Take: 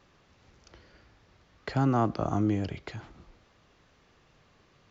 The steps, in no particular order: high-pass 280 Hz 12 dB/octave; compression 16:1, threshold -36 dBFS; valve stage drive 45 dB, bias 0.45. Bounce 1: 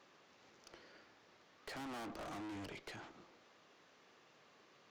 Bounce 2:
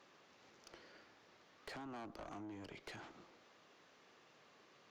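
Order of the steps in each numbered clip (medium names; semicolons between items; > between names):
high-pass > valve stage > compression; compression > high-pass > valve stage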